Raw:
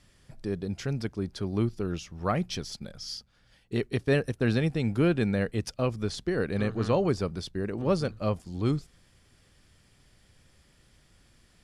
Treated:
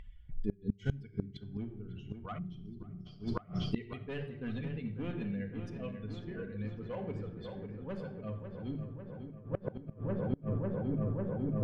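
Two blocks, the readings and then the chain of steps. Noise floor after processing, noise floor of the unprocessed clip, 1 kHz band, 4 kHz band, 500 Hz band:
−55 dBFS, −63 dBFS, −11.5 dB, −13.5 dB, −11.0 dB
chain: spectral dynamics exaggerated over time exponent 2
gain into a clipping stage and back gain 23.5 dB
drawn EQ curve 160 Hz 0 dB, 1,900 Hz +8 dB, 3,200 Hz +12 dB, 4,700 Hz −3 dB
on a send: feedback echo with a low-pass in the loop 548 ms, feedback 74%, low-pass 3,000 Hz, level −9 dB
on the sum: rectangular room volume 2,400 cubic metres, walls furnished, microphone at 1.9 metres
gate with flip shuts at −29 dBFS, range −34 dB
reversed playback
downward compressor 5 to 1, threshold −55 dBFS, peak gain reduction 17.5 dB
reversed playback
gain on a spectral selection 0:02.39–0:03.06, 410–9,100 Hz −17 dB
low-pass that shuts in the quiet parts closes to 2,100 Hz, open at −54.5 dBFS
low-shelf EQ 440 Hz +10.5 dB
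upward compression, threshold −54 dBFS
level +15 dB

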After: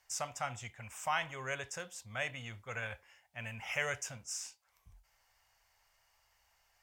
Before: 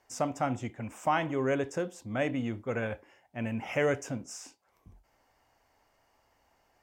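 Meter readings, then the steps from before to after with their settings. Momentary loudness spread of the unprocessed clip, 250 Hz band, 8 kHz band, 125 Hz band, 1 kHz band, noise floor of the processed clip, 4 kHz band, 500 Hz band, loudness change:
13 LU, −21.0 dB, +3.5 dB, −10.0 dB, −6.5 dB, −74 dBFS, +2.0 dB, −13.0 dB, −7.0 dB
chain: guitar amp tone stack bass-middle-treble 10-0-10
level +4 dB

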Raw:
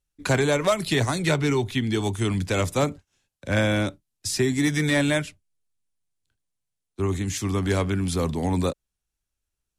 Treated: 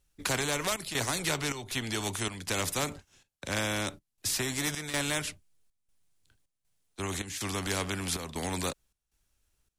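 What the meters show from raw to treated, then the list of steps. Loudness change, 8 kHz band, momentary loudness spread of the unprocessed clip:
−7.5 dB, +0.5 dB, 7 LU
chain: gate pattern "xxxx.xxx.xxx." 79 BPM −12 dB
every bin compressed towards the loudest bin 2 to 1
level −5 dB

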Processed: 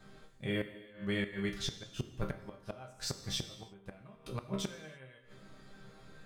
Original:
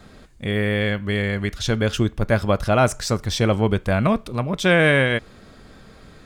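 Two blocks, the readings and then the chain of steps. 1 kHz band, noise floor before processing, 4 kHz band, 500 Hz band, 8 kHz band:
−25.0 dB, −47 dBFS, −13.0 dB, −22.0 dB, −12.5 dB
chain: resonators tuned to a chord C3 minor, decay 0.31 s
gate with flip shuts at −26 dBFS, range −26 dB
reverb whose tail is shaped and stops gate 350 ms falling, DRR 9 dB
level +4 dB

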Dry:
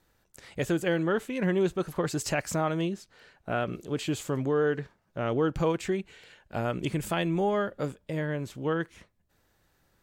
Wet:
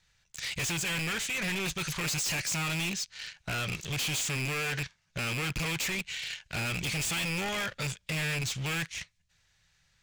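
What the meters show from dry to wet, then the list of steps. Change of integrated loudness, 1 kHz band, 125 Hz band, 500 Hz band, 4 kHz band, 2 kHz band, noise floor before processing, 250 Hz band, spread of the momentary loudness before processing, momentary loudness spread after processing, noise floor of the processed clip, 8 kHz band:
−1.5 dB, −5.5 dB, −2.0 dB, −13.0 dB, +9.0 dB, +5.0 dB, −71 dBFS, −8.5 dB, 9 LU, 7 LU, −72 dBFS, +9.0 dB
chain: loose part that buzzes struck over −35 dBFS, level −29 dBFS
high-shelf EQ 6,200 Hz +11 dB
leveller curve on the samples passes 2
drawn EQ curve 160 Hz 0 dB, 270 Hz −18 dB, 1,300 Hz −1 dB, 2,300 Hz +11 dB, 6,400 Hz +10 dB, 14,000 Hz −14 dB
in parallel at −0.5 dB: downward compressor, threshold −34 dBFS, peak gain reduction 20 dB
on the sum: hard clipping −26.5 dBFS, distortion −3 dB
one half of a high-frequency compander decoder only
level −3.5 dB

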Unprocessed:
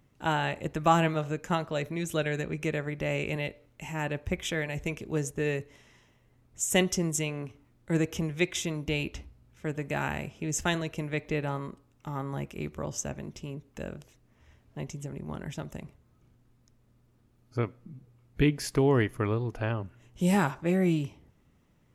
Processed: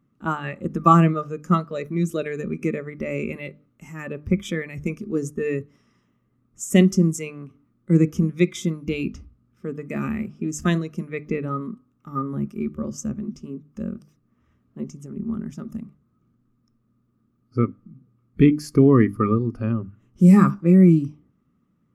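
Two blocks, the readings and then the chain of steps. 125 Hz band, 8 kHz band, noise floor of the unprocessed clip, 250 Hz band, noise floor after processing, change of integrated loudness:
+9.0 dB, −2.0 dB, −65 dBFS, +11.5 dB, −67 dBFS, +9.0 dB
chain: mains-hum notches 50/100/150/200/250/300 Hz
hollow resonant body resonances 210/1,200 Hz, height 18 dB, ringing for 20 ms
noise reduction from a noise print of the clip's start 11 dB
level −2 dB

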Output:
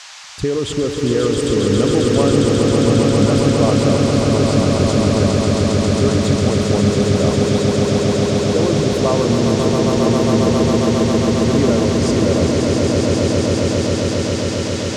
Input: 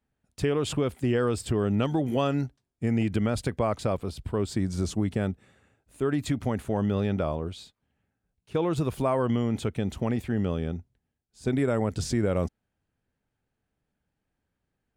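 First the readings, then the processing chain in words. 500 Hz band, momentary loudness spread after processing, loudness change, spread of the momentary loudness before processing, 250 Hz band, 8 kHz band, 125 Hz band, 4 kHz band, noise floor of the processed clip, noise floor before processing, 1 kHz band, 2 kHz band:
+14.5 dB, 4 LU, +12.5 dB, 7 LU, +13.5 dB, +18.0 dB, +13.0 dB, +18.5 dB, −22 dBFS, −83 dBFS, +11.5 dB, +13.5 dB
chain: spectral envelope exaggerated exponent 1.5
noise in a band 750–6,800 Hz −44 dBFS
echo that builds up and dies away 135 ms, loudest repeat 8, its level −5 dB
level +6.5 dB

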